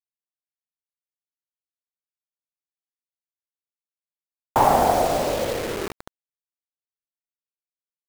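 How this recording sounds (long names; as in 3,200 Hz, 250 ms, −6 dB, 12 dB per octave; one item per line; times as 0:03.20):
tremolo saw up 0.68 Hz, depth 45%
a quantiser's noise floor 6 bits, dither none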